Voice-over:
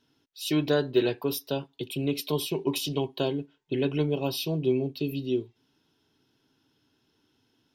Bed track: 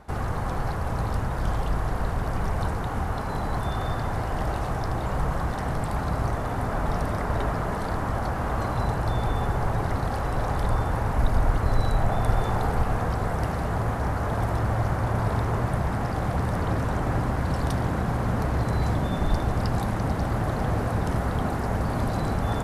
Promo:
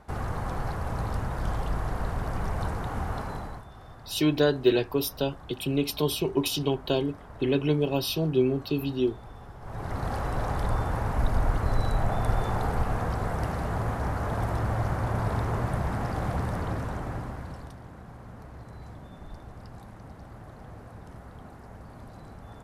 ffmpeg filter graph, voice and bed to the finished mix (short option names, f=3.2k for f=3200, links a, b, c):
-filter_complex "[0:a]adelay=3700,volume=2dB[a];[1:a]volume=13dB,afade=t=out:st=3.19:d=0.46:silence=0.158489,afade=t=in:st=9.61:d=0.5:silence=0.149624,afade=t=out:st=16.3:d=1.45:silence=0.149624[b];[a][b]amix=inputs=2:normalize=0"